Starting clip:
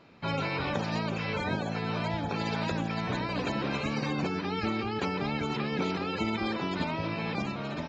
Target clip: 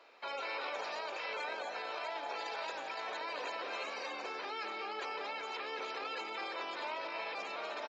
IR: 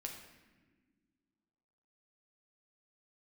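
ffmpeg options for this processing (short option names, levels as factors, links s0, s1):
-filter_complex "[0:a]alimiter=level_in=1.68:limit=0.0631:level=0:latency=1:release=24,volume=0.596,highpass=f=470:w=0.5412,highpass=f=470:w=1.3066,asplit=2[s0][s1];[s1]adelay=233.2,volume=0.447,highshelf=f=4000:g=-5.25[s2];[s0][s2]amix=inputs=2:normalize=0,volume=0.891"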